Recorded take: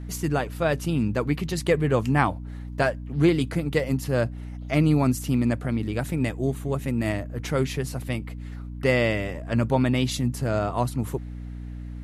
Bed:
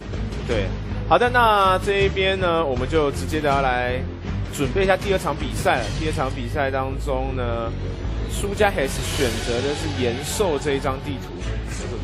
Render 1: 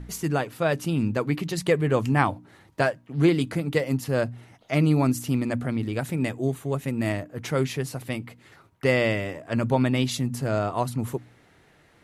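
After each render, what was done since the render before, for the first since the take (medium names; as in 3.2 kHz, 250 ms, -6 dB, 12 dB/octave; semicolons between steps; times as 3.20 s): de-hum 60 Hz, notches 5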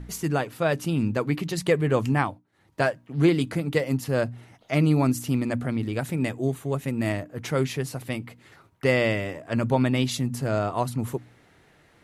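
2.11–2.85 s: dip -21 dB, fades 0.33 s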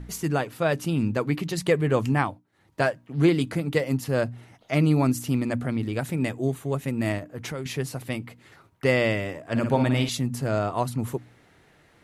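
7.18–7.66 s: compression, threshold -29 dBFS; 9.43–10.09 s: flutter echo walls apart 9.7 m, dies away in 0.45 s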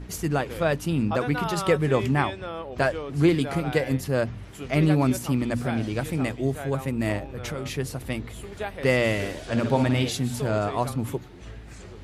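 add bed -14.5 dB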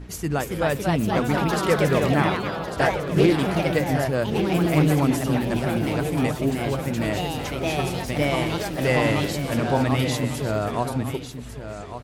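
ever faster or slower copies 303 ms, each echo +2 st, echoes 3; delay 1149 ms -10.5 dB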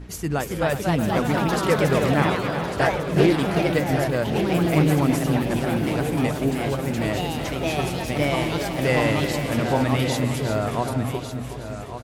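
feedback delay 367 ms, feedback 50%, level -10 dB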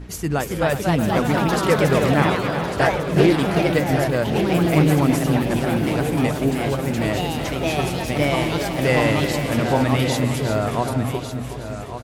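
trim +2.5 dB; peak limiter -3 dBFS, peak gain reduction 1 dB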